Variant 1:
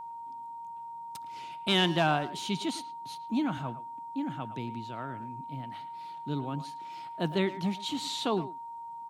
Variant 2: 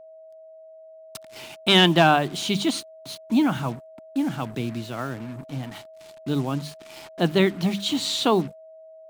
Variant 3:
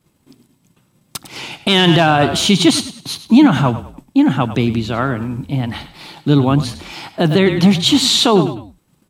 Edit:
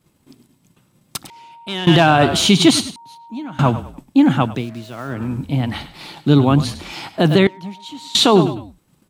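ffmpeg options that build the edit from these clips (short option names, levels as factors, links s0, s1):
-filter_complex "[0:a]asplit=3[s0][s1][s2];[2:a]asplit=5[s3][s4][s5][s6][s7];[s3]atrim=end=1.302[s8];[s0]atrim=start=1.298:end=1.872[s9];[s4]atrim=start=1.868:end=2.962[s10];[s1]atrim=start=2.958:end=3.592[s11];[s5]atrim=start=3.588:end=4.66[s12];[1:a]atrim=start=4.42:end=5.28[s13];[s6]atrim=start=5.04:end=7.472[s14];[s2]atrim=start=7.468:end=8.152[s15];[s7]atrim=start=8.148[s16];[s8][s9]acrossfade=d=0.004:c1=hsin:c2=hsin[s17];[s17][s10]acrossfade=d=0.004:c1=hsin:c2=hsin[s18];[s18][s11]acrossfade=d=0.004:c1=hsin:c2=hsin[s19];[s19][s12]acrossfade=d=0.004:c1=hsin:c2=hsin[s20];[s20][s13]acrossfade=d=0.24:c1=tri:c2=tri[s21];[s21][s14]acrossfade=d=0.24:c1=tri:c2=tri[s22];[s22][s15]acrossfade=d=0.004:c1=hsin:c2=hsin[s23];[s23][s16]acrossfade=d=0.004:c1=hsin:c2=hsin"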